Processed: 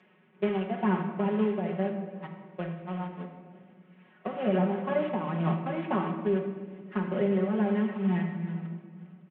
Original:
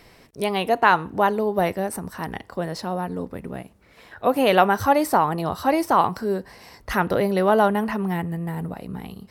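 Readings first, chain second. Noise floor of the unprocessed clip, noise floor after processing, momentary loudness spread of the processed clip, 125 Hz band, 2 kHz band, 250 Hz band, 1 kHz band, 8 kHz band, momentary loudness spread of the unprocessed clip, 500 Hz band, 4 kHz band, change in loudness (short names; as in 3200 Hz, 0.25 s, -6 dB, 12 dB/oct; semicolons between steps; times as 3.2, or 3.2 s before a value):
-53 dBFS, -60 dBFS, 14 LU, -2.0 dB, -13.5 dB, -3.0 dB, -15.0 dB, under -40 dB, 15 LU, -8.0 dB, -16.0 dB, -8.0 dB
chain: delta modulation 16 kbps, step -26.5 dBFS; gate -24 dBFS, range -32 dB; HPF 170 Hz 24 dB/oct; low shelf 240 Hz +7 dB; comb 5.4 ms, depth 99%; compressor 3:1, threshold -30 dBFS, peak gain reduction 16.5 dB; tremolo 2.2 Hz, depth 47%; air absorption 90 m; shoebox room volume 1900 m³, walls mixed, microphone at 1.4 m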